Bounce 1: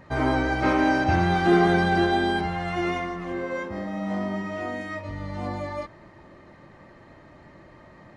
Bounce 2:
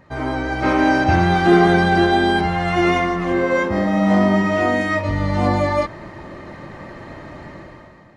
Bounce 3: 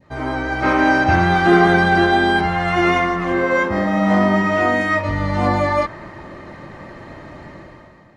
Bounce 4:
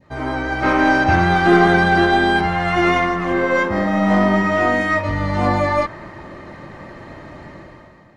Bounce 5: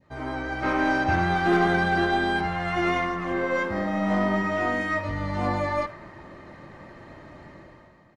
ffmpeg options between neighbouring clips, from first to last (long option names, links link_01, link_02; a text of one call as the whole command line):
ffmpeg -i in.wav -af "dynaudnorm=framelen=120:gausssize=11:maxgain=15dB,volume=-1dB" out.wav
ffmpeg -i in.wav -af "adynamicequalizer=threshold=0.0355:dfrequency=1400:dqfactor=0.86:tfrequency=1400:tqfactor=0.86:attack=5:release=100:ratio=0.375:range=2.5:mode=boostabove:tftype=bell,volume=-1dB" out.wav
ffmpeg -i in.wav -af "aeval=exprs='0.841*(cos(1*acos(clip(val(0)/0.841,-1,1)))-cos(1*PI/2))+0.015*(cos(8*acos(clip(val(0)/0.841,-1,1)))-cos(8*PI/2))':channel_layout=same" out.wav
ffmpeg -i in.wav -filter_complex "[0:a]asoftclip=type=hard:threshold=-5dB,asplit=2[link_01][link_02];[link_02]adelay=100,highpass=300,lowpass=3400,asoftclip=type=hard:threshold=-13dB,volume=-16dB[link_03];[link_01][link_03]amix=inputs=2:normalize=0,volume=-8.5dB" out.wav